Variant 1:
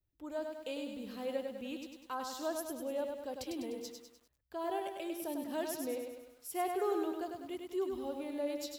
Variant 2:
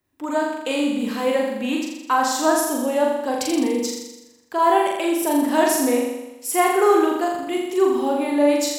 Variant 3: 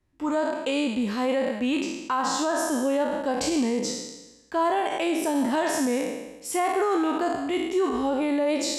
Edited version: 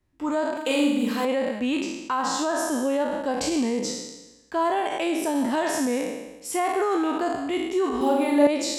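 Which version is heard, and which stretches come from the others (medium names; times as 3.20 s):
3
0.57–1.25 s: from 2
8.01–8.47 s: from 2
not used: 1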